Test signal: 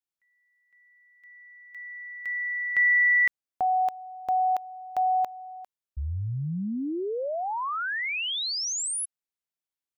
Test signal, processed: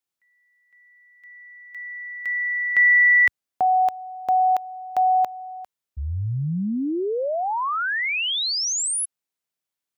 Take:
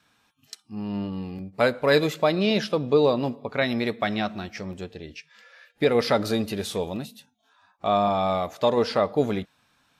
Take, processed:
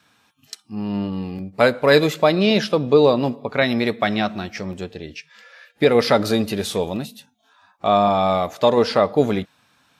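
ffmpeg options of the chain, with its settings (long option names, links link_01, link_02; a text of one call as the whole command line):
ffmpeg -i in.wav -af "highpass=72,volume=5.5dB" out.wav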